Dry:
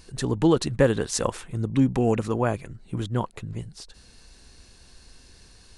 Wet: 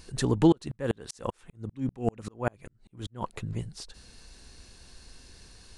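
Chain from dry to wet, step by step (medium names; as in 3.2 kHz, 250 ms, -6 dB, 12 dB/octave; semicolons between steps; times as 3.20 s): 0.52–3.22 s: sawtooth tremolo in dB swelling 5.1 Hz, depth 39 dB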